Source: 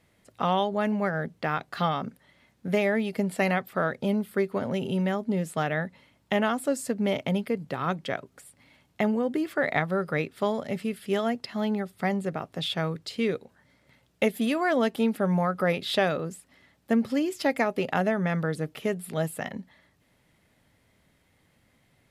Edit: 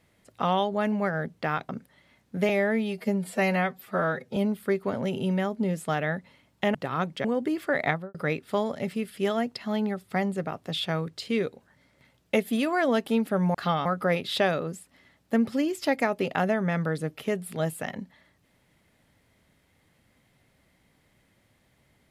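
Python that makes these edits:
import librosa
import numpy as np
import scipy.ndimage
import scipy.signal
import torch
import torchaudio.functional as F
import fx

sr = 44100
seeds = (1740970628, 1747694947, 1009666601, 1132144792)

y = fx.studio_fade_out(x, sr, start_s=9.78, length_s=0.25)
y = fx.edit(y, sr, fx.move(start_s=1.69, length_s=0.31, to_s=15.43),
    fx.stretch_span(start_s=2.8, length_s=1.25, factor=1.5),
    fx.cut(start_s=6.43, length_s=1.2),
    fx.cut(start_s=8.13, length_s=1.0), tone=tone)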